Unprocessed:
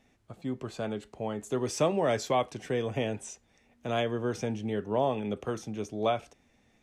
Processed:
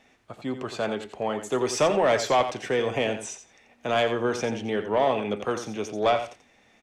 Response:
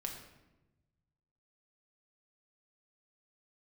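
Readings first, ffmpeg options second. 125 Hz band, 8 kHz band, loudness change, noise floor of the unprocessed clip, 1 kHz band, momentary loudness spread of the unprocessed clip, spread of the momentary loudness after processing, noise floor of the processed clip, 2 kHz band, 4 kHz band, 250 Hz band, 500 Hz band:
−1.5 dB, +6.0 dB, +5.5 dB, −67 dBFS, +7.0 dB, 9 LU, 12 LU, −61 dBFS, +9.0 dB, +7.5 dB, +2.5 dB, +6.0 dB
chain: -filter_complex "[0:a]asplit=2[link_01][link_02];[link_02]highpass=frequency=720:poles=1,volume=14dB,asoftclip=type=tanh:threshold=-14dB[link_03];[link_01][link_03]amix=inputs=2:normalize=0,lowpass=frequency=4000:poles=1,volume=-6dB,aecho=1:1:87|174:0.316|0.0506,volume=2dB"

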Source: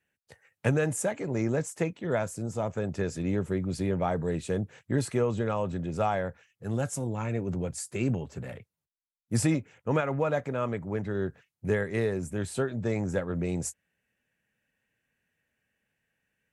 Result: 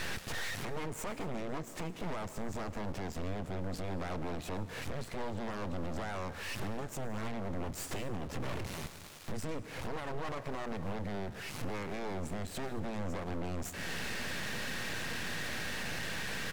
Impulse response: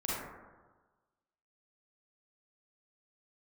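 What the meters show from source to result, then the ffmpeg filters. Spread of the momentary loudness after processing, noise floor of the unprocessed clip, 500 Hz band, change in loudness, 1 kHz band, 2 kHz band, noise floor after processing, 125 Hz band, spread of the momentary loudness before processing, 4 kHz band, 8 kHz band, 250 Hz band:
4 LU, below −85 dBFS, −11.0 dB, −9.0 dB, −5.0 dB, −1.0 dB, −48 dBFS, −10.0 dB, 6 LU, +5.5 dB, −6.5 dB, −9.5 dB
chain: -filter_complex "[0:a]aeval=exprs='val(0)+0.5*0.0133*sgn(val(0))':channel_layout=same,aemphasis=mode=reproduction:type=50fm,acompressor=threshold=-40dB:ratio=8,alimiter=level_in=13dB:limit=-24dB:level=0:latency=1:release=27,volume=-13dB,aeval=exprs='0.0141*(cos(1*acos(clip(val(0)/0.0141,-1,1)))-cos(1*PI/2))+0.00141*(cos(4*acos(clip(val(0)/0.0141,-1,1)))-cos(4*PI/2))+0.000562*(cos(7*acos(clip(val(0)/0.0141,-1,1)))-cos(7*PI/2))+0.00158*(cos(8*acos(clip(val(0)/0.0141,-1,1)))-cos(8*PI/2))':channel_layout=same,aeval=exprs='abs(val(0))':channel_layout=same,aecho=1:1:225:0.075,asplit=2[link_01][link_02];[1:a]atrim=start_sample=2205,adelay=111[link_03];[link_02][link_03]afir=irnorm=-1:irlink=0,volume=-20dB[link_04];[link_01][link_04]amix=inputs=2:normalize=0,volume=7.5dB"

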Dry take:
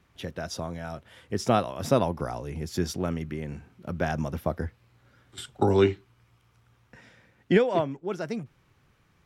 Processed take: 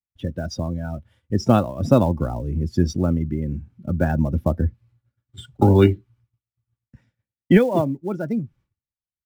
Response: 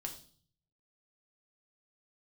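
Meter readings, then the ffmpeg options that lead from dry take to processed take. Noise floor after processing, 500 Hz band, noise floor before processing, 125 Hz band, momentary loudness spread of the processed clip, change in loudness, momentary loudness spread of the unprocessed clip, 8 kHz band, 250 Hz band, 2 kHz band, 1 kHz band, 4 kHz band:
below −85 dBFS, +4.0 dB, −65 dBFS, +11.0 dB, 13 LU, +7.0 dB, 17 LU, can't be measured, +9.0 dB, +2.0 dB, +3.0 dB, +0.5 dB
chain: -filter_complex "[0:a]bass=frequency=250:gain=10,treble=frequency=4000:gain=1,afftdn=noise_reduction=17:noise_floor=-33,aecho=1:1:3.5:0.3,agate=range=-33dB:threshold=-52dB:ratio=3:detection=peak,acrossover=split=470[link_01][link_02];[link_02]acrusher=bits=6:mode=log:mix=0:aa=0.000001[link_03];[link_01][link_03]amix=inputs=2:normalize=0,volume=3.5dB"

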